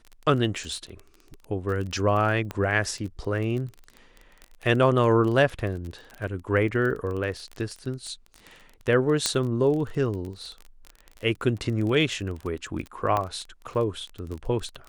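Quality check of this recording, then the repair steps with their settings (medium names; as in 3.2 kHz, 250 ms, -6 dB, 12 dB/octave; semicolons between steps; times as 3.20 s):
crackle 22 per s -31 dBFS
2.51 s: pop -17 dBFS
9.26 s: pop -8 dBFS
13.17 s: pop -13 dBFS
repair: de-click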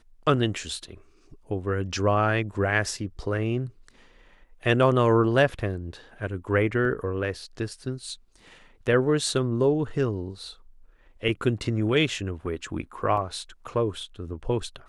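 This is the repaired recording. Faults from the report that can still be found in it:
9.26 s: pop
13.17 s: pop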